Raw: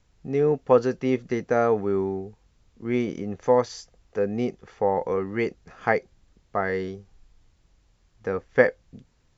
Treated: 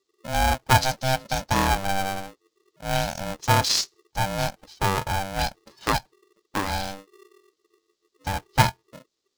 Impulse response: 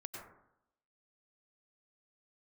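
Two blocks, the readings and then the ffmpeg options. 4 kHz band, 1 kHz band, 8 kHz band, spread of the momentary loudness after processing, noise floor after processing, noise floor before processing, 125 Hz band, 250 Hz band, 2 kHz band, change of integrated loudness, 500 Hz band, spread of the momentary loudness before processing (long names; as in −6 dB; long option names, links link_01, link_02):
+19.0 dB, +6.0 dB, can't be measured, 11 LU, −78 dBFS, −65 dBFS, +7.5 dB, −4.5 dB, +3.0 dB, +0.5 dB, −9.0 dB, 13 LU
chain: -af "highshelf=frequency=2900:width_type=q:width=3:gain=12.5,afftdn=noise_reduction=21:noise_floor=-41,aeval=exprs='val(0)*sgn(sin(2*PI*390*n/s))':channel_layout=same"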